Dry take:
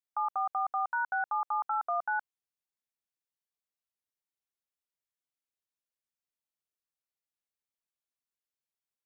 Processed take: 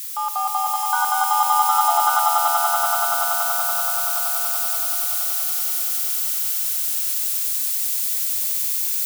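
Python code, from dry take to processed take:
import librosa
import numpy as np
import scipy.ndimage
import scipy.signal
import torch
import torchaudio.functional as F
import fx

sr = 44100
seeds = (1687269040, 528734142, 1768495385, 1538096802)

y = x + 0.5 * 10.0 ** (-30.5 / 20.0) * np.diff(np.sign(x), prepend=np.sign(x[:1]))
y = fx.echo_swell(y, sr, ms=95, loudest=8, wet_db=-3.5)
y = y * librosa.db_to_amplitude(6.0)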